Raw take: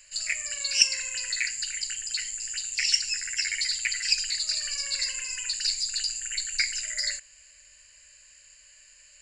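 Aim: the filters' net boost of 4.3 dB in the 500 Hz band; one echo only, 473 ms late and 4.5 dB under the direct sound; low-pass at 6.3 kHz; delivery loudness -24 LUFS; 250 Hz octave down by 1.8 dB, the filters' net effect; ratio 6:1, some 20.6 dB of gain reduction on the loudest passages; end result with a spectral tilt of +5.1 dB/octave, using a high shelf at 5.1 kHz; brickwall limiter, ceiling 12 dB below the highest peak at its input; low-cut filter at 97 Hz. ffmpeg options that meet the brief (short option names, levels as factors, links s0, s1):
-af "highpass=97,lowpass=6300,equalizer=f=250:t=o:g=-4,equalizer=f=500:t=o:g=5.5,highshelf=f=5100:g=9,acompressor=threshold=0.02:ratio=6,alimiter=level_in=2.37:limit=0.0631:level=0:latency=1,volume=0.422,aecho=1:1:473:0.596,volume=4.73"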